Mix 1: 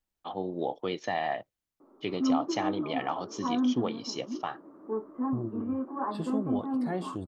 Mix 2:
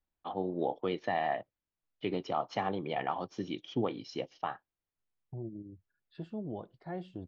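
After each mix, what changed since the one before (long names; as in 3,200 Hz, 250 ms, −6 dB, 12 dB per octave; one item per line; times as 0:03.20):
second voice −5.5 dB
background: muted
master: add high-frequency loss of the air 240 metres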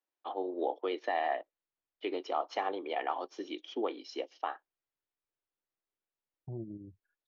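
first voice: add Butterworth high-pass 300 Hz 36 dB per octave
second voice: entry +1.15 s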